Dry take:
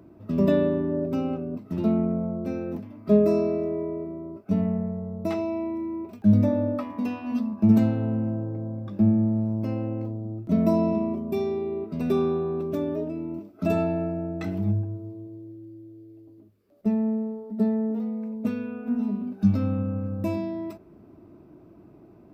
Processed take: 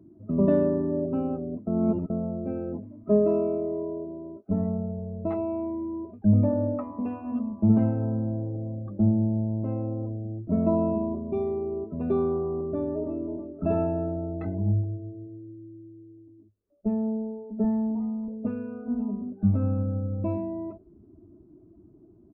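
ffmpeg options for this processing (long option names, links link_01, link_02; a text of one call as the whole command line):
ffmpeg -i in.wav -filter_complex "[0:a]asettb=1/sr,asplit=3[link_01][link_02][link_03];[link_01]atrim=end=3.034[link_04];[link_02]atrim=start=3.03:end=4.48,asetpts=PTS-STARTPTS,afade=type=in:duration=0.004:curve=qsin,afade=type=out:start_time=1.446:duration=0.004:curve=qsin,highpass=frequency=150:poles=1[link_05];[link_03]atrim=start=4.476[link_06];[link_04][link_05]acrossfade=duration=0.004:curve1=hsin:curve2=qsin[link_07];[link_07][link_06]acrossfade=duration=0.004:curve1=qsin:curve2=hsin,asplit=2[link_08][link_09];[link_09]afade=type=in:start_time=12.7:duration=0.01,afade=type=out:start_time=13.2:duration=0.01,aecho=0:1:320|640|960|1280|1600|1920|2240:0.375837|0.206711|0.113691|0.0625299|0.0343915|0.0189153|0.0104034[link_10];[link_08][link_10]amix=inputs=2:normalize=0,asettb=1/sr,asplit=3[link_11][link_12][link_13];[link_11]atrim=end=17.644[link_14];[link_12]atrim=start=17.64:end=18.28,asetpts=PTS-STARTPTS,afade=type=in:duration=0.004:curve=qsin,afade=type=out:start_time=0.636:duration=0.004:curve=qsin,aecho=1:1:1:0.81,atrim=end_sample=28224[link_15];[link_13]atrim=start=18.276[link_16];[link_14][link_15]acrossfade=duration=0.004:curve1=hsin:curve2=qsin[link_17];[link_17][link_16]acrossfade=duration=0.004:curve1=qsin:curve2=hsin,asplit=3[link_18][link_19][link_20];[link_18]atrim=end=1.672[link_21];[link_19]atrim=start=1.668:end=2.102,asetpts=PTS-STARTPTS,areverse[link_22];[link_20]atrim=start=2.098[link_23];[link_21][link_22]acrossfade=duration=0.004:curve1=hsin:curve2=hsin[link_24];[link_24][link_23]acrossfade=duration=0.004:curve1=hsin:curve2=hsin,afftdn=noise_reduction=15:noise_floor=-44,asubboost=boost=6.5:cutoff=56,lowpass=1200" out.wav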